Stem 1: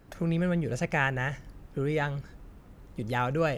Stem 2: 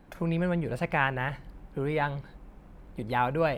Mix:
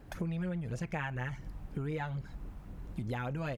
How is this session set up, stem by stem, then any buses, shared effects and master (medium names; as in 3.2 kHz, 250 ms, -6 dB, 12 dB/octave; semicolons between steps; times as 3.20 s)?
-2.0 dB, 0.00 s, no send, wow and flutter 26 cents
-4.0 dB, 0.3 ms, no send, none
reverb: none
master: bass shelf 150 Hz +4.5 dB; compression 4:1, threshold -35 dBFS, peak gain reduction 12.5 dB